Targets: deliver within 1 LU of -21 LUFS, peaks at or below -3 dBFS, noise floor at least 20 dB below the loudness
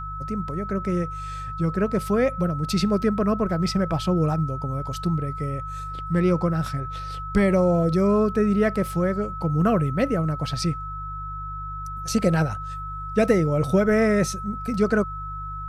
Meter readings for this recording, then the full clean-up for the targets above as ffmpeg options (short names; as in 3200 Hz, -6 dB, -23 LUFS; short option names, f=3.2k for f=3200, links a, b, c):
hum 50 Hz; harmonics up to 150 Hz; hum level -33 dBFS; steady tone 1300 Hz; tone level -32 dBFS; loudness -24.0 LUFS; peak -7.0 dBFS; loudness target -21.0 LUFS
-> -af "bandreject=f=50:t=h:w=4,bandreject=f=100:t=h:w=4,bandreject=f=150:t=h:w=4"
-af "bandreject=f=1.3k:w=30"
-af "volume=3dB"